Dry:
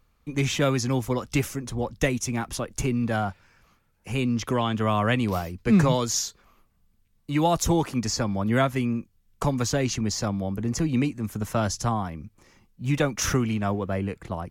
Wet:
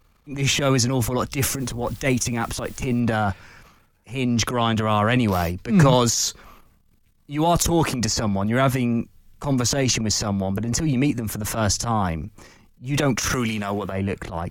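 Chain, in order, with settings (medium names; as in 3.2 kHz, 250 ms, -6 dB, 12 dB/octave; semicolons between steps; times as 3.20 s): 1.32–3.00 s: word length cut 10-bit, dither triangular; 13.33–13.92 s: tilt EQ +2.5 dB/octave; transient shaper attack -12 dB, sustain +9 dB; trim +4 dB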